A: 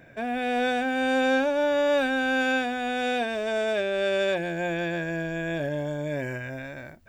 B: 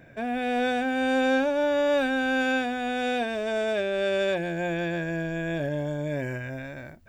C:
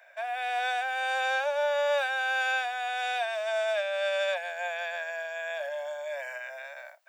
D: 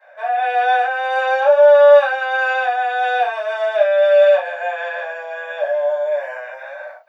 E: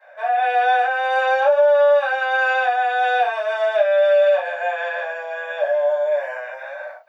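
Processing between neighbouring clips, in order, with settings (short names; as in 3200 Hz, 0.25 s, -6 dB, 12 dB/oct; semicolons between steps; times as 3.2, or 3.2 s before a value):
low shelf 330 Hz +4 dB; gain -1.5 dB
steep high-pass 580 Hz 72 dB/oct
reverb, pre-delay 3 ms, DRR -10.5 dB; gain -10 dB
compressor, threshold -12 dBFS, peak gain reduction 7 dB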